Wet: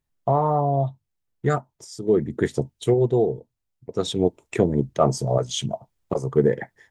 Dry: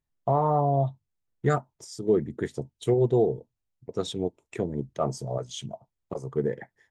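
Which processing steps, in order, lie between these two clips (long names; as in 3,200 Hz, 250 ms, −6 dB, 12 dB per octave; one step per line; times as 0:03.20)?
speech leveller within 4 dB 0.5 s
level +6 dB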